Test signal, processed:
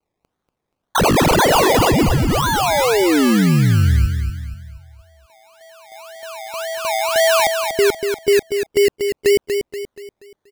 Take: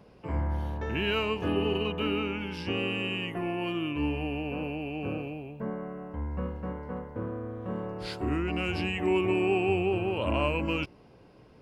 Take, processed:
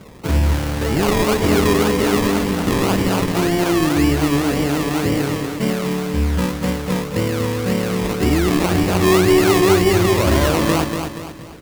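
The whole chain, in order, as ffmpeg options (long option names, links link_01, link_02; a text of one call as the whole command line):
ffmpeg -i in.wav -filter_complex "[0:a]equalizer=frequency=990:width_type=o:width=1.8:gain=-5,asplit=2[link_01][link_02];[link_02]alimiter=level_in=1.5dB:limit=-24dB:level=0:latency=1,volume=-1.5dB,volume=2dB[link_03];[link_01][link_03]amix=inputs=2:normalize=0,acrusher=samples=24:mix=1:aa=0.000001:lfo=1:lforange=14.4:lforate=1.9,aecho=1:1:239|478|717|956|1195:0.473|0.199|0.0835|0.0351|0.0147,volume=8.5dB" out.wav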